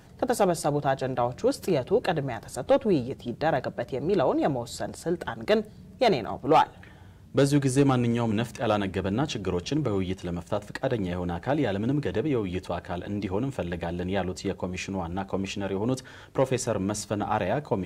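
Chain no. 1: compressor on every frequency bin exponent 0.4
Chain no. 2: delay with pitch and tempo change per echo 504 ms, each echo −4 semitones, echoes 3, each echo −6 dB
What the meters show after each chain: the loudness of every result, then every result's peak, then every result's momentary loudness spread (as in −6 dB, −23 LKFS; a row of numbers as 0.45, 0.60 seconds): −19.5, −26.5 LKFS; −2.0, −9.0 dBFS; 4, 7 LU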